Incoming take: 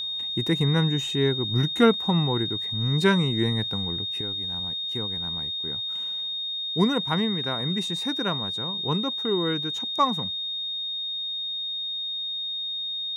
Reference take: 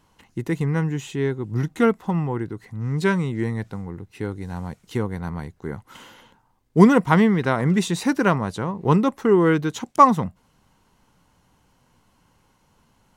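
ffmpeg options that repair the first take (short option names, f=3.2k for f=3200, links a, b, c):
-af "bandreject=f=3.7k:w=30,asetnsamples=n=441:p=0,asendcmd='4.21 volume volume 9.5dB',volume=0dB"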